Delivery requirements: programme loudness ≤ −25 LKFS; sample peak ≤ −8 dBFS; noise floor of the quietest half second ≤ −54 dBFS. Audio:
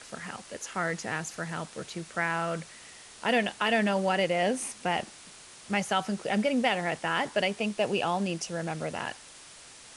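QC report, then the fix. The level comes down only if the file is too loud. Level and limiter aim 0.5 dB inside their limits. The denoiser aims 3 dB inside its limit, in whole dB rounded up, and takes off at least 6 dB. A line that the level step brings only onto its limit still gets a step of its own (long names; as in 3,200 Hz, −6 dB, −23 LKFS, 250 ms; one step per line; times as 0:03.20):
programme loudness −30.0 LKFS: in spec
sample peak −12.5 dBFS: in spec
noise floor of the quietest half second −50 dBFS: out of spec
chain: broadband denoise 7 dB, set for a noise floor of −50 dBFS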